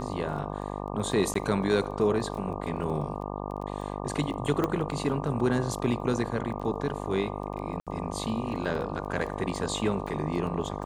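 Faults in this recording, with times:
mains buzz 50 Hz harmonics 24 −35 dBFS
surface crackle 11 per second −37 dBFS
0:01.34–0:01.35: drop-out 14 ms
0:04.64: click −14 dBFS
0:07.80–0:07.87: drop-out 67 ms

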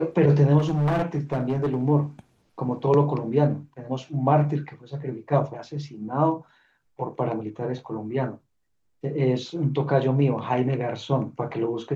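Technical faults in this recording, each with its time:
0:00.58–0:01.83: clipping −19.5 dBFS

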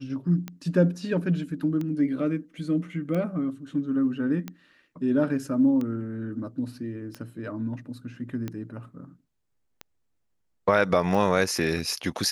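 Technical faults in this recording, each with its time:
scratch tick 45 rpm −20 dBFS

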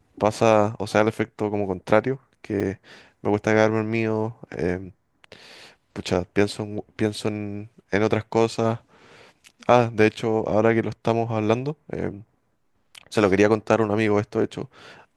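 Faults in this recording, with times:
0:02.60: drop-out 3.9 ms

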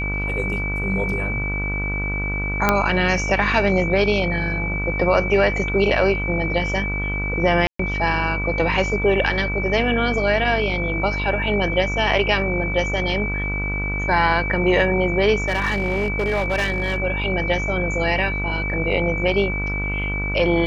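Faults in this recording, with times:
mains buzz 50 Hz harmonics 31 −26 dBFS
whistle 2,300 Hz −25 dBFS
0:02.69: click −2 dBFS
0:07.67–0:07.79: drop-out 124 ms
0:15.42–0:17.00: clipping −16 dBFS

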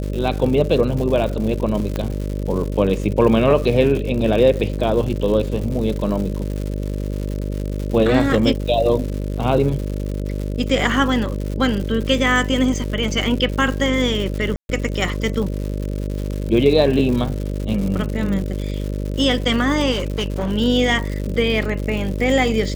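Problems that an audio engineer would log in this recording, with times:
mains buzz 50 Hz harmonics 12 −24 dBFS
surface crackle 180 per second −26 dBFS
0:01.96: click −10 dBFS
0:14.56–0:14.69: drop-out 130 ms
0:19.91–0:20.53: clipping −17.5 dBFS

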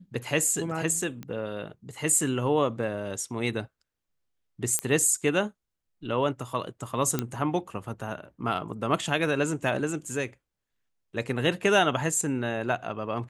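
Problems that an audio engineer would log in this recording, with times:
0:01.23: click −24 dBFS
0:04.79: click −9 dBFS
0:07.19: click −11 dBFS

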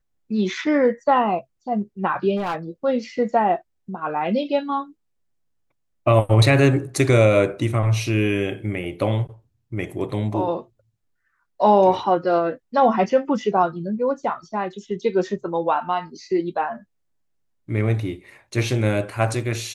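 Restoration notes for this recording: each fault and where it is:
0:02.36–0:02.56: clipping −20.5 dBFS

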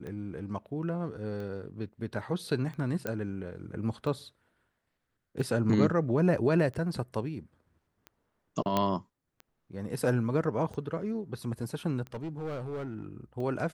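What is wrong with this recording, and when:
scratch tick 45 rpm −30 dBFS
0:03.07: click −18 dBFS
0:08.77: click −13 dBFS
0:12.14–0:13.06: clipping −32 dBFS

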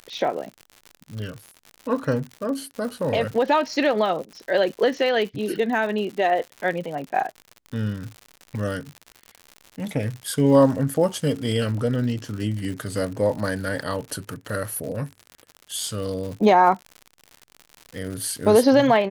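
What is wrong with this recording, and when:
surface crackle 110 per second −31 dBFS

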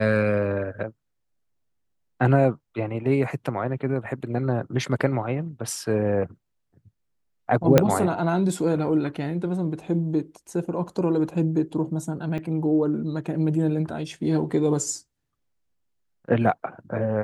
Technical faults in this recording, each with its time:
0:07.78: click −2 dBFS
0:12.38–0:12.39: drop-out 5.1 ms

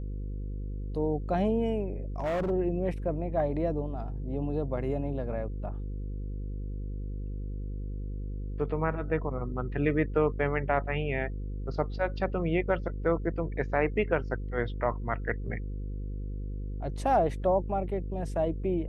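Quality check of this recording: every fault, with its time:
mains buzz 50 Hz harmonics 10 −35 dBFS
0:02.20–0:02.51: clipping −26.5 dBFS

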